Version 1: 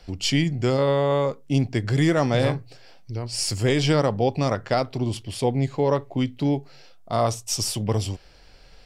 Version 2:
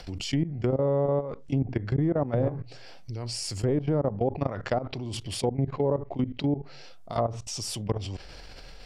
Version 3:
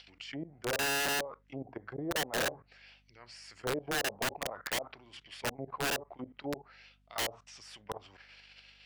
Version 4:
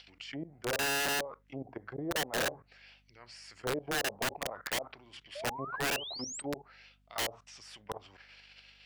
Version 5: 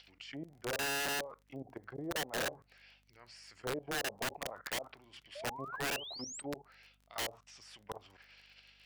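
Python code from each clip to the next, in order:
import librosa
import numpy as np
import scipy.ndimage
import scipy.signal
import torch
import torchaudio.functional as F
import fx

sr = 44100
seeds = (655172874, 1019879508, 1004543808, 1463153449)

y1 = fx.level_steps(x, sr, step_db=21)
y1 = fx.env_lowpass_down(y1, sr, base_hz=740.0, full_db=-20.0)
y1 = fx.env_flatten(y1, sr, amount_pct=50)
y1 = y1 * librosa.db_to_amplitude(-2.5)
y2 = fx.auto_wah(y1, sr, base_hz=600.0, top_hz=3300.0, q=2.5, full_db=-22.0, direction='down')
y2 = (np.mod(10.0 ** (26.5 / 20.0) * y2 + 1.0, 2.0) - 1.0) / 10.0 ** (26.5 / 20.0)
y2 = fx.add_hum(y2, sr, base_hz=50, snr_db=31)
y3 = fx.spec_paint(y2, sr, seeds[0], shape='rise', start_s=5.35, length_s=1.07, low_hz=550.0, high_hz=8600.0, level_db=-42.0)
y4 = fx.dmg_crackle(y3, sr, seeds[1], per_s=30.0, level_db=-48.0)
y4 = y4 * librosa.db_to_amplitude(-4.0)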